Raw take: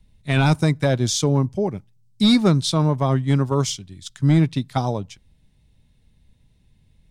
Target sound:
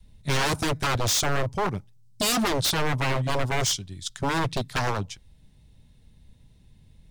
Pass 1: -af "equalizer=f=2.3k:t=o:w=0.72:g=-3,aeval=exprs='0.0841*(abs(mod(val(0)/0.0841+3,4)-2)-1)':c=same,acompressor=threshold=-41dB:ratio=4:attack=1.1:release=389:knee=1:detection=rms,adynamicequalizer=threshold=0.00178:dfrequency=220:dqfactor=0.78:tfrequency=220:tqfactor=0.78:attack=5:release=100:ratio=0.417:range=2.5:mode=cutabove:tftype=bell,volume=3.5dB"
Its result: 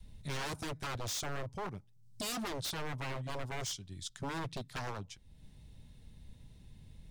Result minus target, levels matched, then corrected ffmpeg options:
compressor: peak gain reduction +14.5 dB
-af "equalizer=f=2.3k:t=o:w=0.72:g=-3,aeval=exprs='0.0841*(abs(mod(val(0)/0.0841+3,4)-2)-1)':c=same,adynamicequalizer=threshold=0.00178:dfrequency=220:dqfactor=0.78:tfrequency=220:tqfactor=0.78:attack=5:release=100:ratio=0.417:range=2.5:mode=cutabove:tftype=bell,volume=3.5dB"

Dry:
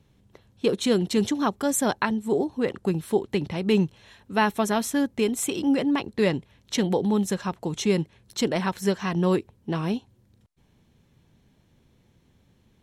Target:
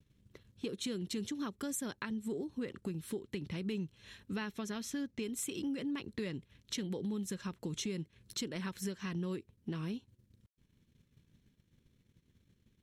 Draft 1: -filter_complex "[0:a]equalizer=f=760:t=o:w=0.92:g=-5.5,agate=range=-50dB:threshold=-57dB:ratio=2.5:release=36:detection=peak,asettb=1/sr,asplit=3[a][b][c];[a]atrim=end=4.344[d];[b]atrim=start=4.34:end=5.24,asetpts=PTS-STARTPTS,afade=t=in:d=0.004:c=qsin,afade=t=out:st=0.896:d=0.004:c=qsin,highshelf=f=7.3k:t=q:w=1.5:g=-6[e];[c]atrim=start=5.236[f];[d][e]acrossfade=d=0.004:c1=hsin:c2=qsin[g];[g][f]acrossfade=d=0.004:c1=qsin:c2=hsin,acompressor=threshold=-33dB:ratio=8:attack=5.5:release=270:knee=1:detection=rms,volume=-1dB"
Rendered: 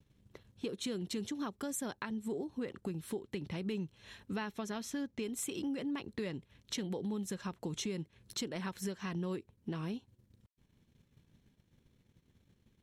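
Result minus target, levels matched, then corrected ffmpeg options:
1000 Hz band +3.5 dB
-filter_complex "[0:a]equalizer=f=760:t=o:w=0.92:g=-14,agate=range=-50dB:threshold=-57dB:ratio=2.5:release=36:detection=peak,asettb=1/sr,asplit=3[a][b][c];[a]atrim=end=4.344[d];[b]atrim=start=4.34:end=5.24,asetpts=PTS-STARTPTS,afade=t=in:d=0.004:c=qsin,afade=t=out:st=0.896:d=0.004:c=qsin,highshelf=f=7.3k:t=q:w=1.5:g=-6[e];[c]atrim=start=5.236[f];[d][e]acrossfade=d=0.004:c1=hsin:c2=qsin[g];[g][f]acrossfade=d=0.004:c1=qsin:c2=hsin,acompressor=threshold=-33dB:ratio=8:attack=5.5:release=270:knee=1:detection=rms,volume=-1dB"

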